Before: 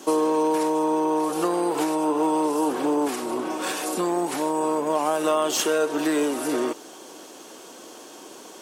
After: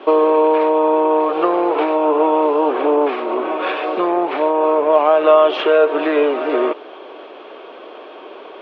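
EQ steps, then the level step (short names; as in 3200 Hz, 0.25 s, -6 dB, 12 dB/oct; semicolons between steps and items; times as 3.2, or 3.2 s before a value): air absorption 280 m; speaker cabinet 390–3600 Hz, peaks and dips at 410 Hz +7 dB, 620 Hz +7 dB, 1200 Hz +5 dB, 2400 Hz +7 dB, 3400 Hz +4 dB; +7.0 dB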